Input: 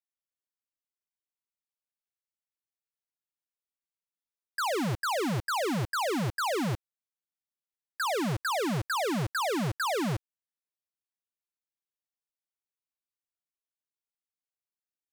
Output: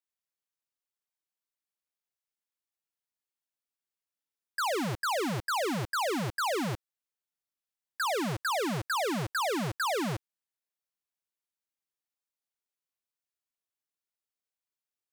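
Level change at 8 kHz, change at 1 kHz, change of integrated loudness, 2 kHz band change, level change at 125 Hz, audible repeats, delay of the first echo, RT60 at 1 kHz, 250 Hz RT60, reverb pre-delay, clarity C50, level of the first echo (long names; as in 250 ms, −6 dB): 0.0 dB, −0.5 dB, −1.0 dB, 0.0 dB, −4.0 dB, no echo audible, no echo audible, no reverb audible, no reverb audible, no reverb audible, no reverb audible, no echo audible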